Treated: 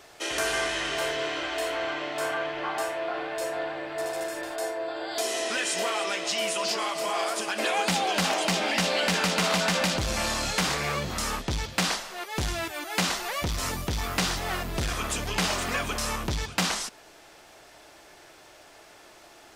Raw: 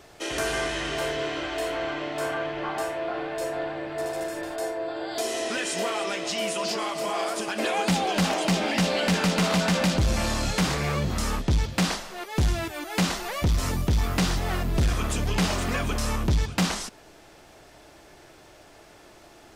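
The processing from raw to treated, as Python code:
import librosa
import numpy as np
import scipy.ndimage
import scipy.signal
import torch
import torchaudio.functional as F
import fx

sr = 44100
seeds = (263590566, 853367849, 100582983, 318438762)

y = fx.low_shelf(x, sr, hz=380.0, db=-11.0)
y = F.gain(torch.from_numpy(y), 2.0).numpy()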